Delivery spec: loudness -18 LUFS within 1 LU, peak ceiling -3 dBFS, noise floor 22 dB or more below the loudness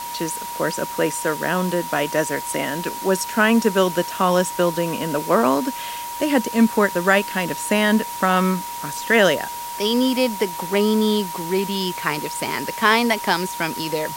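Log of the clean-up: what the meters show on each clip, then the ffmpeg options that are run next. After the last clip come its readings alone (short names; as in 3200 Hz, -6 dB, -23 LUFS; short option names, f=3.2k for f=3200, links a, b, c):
steady tone 950 Hz; tone level -29 dBFS; noise floor -31 dBFS; noise floor target -43 dBFS; loudness -20.5 LUFS; peak -2.0 dBFS; loudness target -18.0 LUFS
-> -af "bandreject=f=950:w=30"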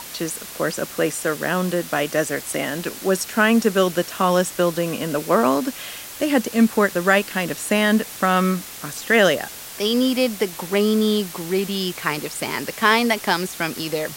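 steady tone none; noise floor -36 dBFS; noise floor target -43 dBFS
-> -af "afftdn=nr=7:nf=-36"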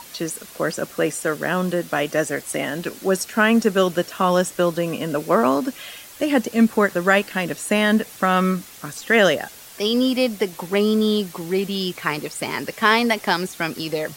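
noise floor -42 dBFS; noise floor target -43 dBFS
-> -af "afftdn=nr=6:nf=-42"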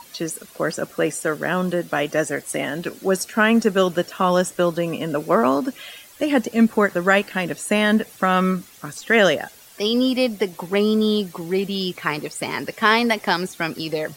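noise floor -46 dBFS; loudness -21.0 LUFS; peak -2.5 dBFS; loudness target -18.0 LUFS
-> -af "volume=3dB,alimiter=limit=-3dB:level=0:latency=1"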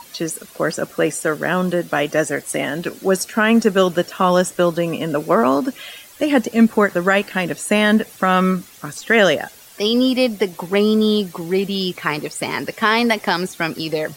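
loudness -18.5 LUFS; peak -3.0 dBFS; noise floor -43 dBFS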